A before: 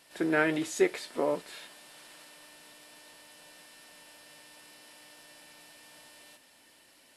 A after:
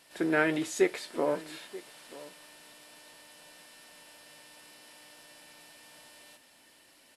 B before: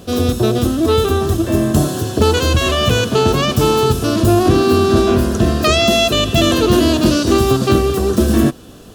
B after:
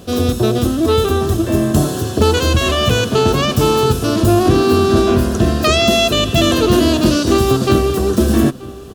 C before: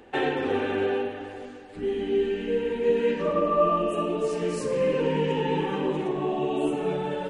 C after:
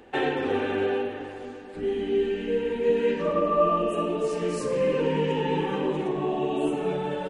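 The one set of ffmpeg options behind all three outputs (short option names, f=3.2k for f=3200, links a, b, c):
-filter_complex "[0:a]asplit=2[a][b];[b]adelay=932.9,volume=-18dB,highshelf=f=4k:g=-21[c];[a][c]amix=inputs=2:normalize=0"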